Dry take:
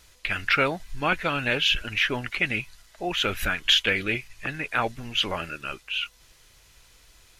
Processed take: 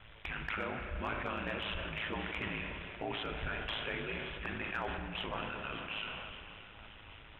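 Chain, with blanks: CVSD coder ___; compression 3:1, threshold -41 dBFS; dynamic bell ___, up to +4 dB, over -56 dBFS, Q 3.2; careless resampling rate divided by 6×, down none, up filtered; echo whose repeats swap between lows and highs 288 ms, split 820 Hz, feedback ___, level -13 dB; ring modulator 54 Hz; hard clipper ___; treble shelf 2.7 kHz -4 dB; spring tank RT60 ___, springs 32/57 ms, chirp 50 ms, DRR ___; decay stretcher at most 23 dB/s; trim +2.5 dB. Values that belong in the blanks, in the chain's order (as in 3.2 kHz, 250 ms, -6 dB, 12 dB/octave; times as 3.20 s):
32 kbps, 1 kHz, 77%, -29.5 dBFS, 3.6 s, 6 dB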